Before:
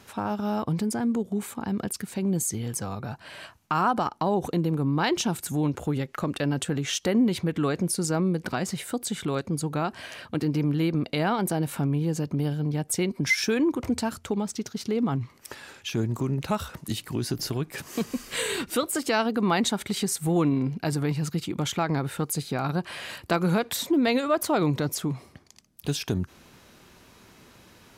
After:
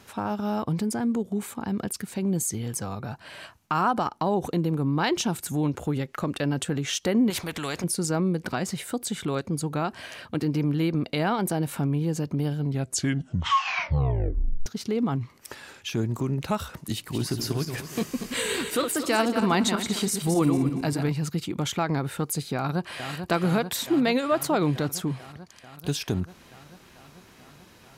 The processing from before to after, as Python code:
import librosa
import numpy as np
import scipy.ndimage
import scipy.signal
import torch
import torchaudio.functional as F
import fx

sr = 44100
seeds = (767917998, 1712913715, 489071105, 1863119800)

y = fx.spectral_comp(x, sr, ratio=2.0, at=(7.3, 7.84))
y = fx.reverse_delay_fb(y, sr, ms=117, feedback_pct=52, wet_db=-6.5, at=(16.95, 21.09))
y = fx.echo_throw(y, sr, start_s=22.55, length_s=0.57, ms=440, feedback_pct=80, wet_db=-7.5)
y = fx.edit(y, sr, fx.tape_stop(start_s=12.57, length_s=2.09), tone=tone)